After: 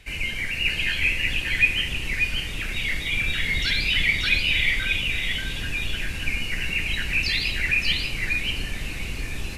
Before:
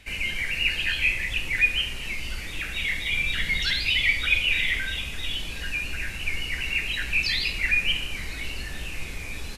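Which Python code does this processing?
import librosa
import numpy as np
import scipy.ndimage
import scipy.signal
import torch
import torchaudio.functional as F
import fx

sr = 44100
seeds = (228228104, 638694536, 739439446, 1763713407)

p1 = fx.octave_divider(x, sr, octaves=1, level_db=3.0)
y = p1 + fx.echo_single(p1, sr, ms=586, db=-3.5, dry=0)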